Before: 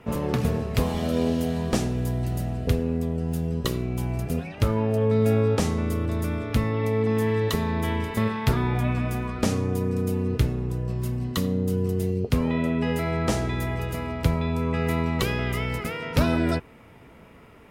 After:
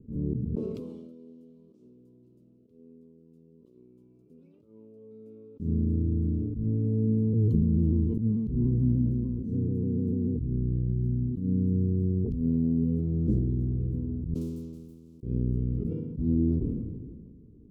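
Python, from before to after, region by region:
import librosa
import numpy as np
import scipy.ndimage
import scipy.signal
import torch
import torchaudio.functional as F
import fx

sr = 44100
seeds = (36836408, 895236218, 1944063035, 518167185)

y = fx.chain(x, sr, fx.highpass(hz=1000.0, slope=12),
    fx.high_shelf(hz=8400.0, db=-11.5), at=(0.55, 5.6))
y = fx.chain(y, sr, fx.ripple_eq(per_octave=1.9, db=9),
    fx.vibrato_shape(shape='saw_down', rate_hz=6.8, depth_cents=100.0), at=(7.33, 10.45))
y = fx.chain(y, sr, fx.median_filter(points=15),
    fx.highpass(hz=190.0, slope=24),
    fx.spectral_comp(ratio=10.0), at=(14.34, 15.23))
y = fx.auto_swell(y, sr, attack_ms=133.0)
y = scipy.signal.sosfilt(scipy.signal.cheby2(4, 40, 680.0, 'lowpass', fs=sr, output='sos'), y)
y = fx.sustainer(y, sr, db_per_s=32.0)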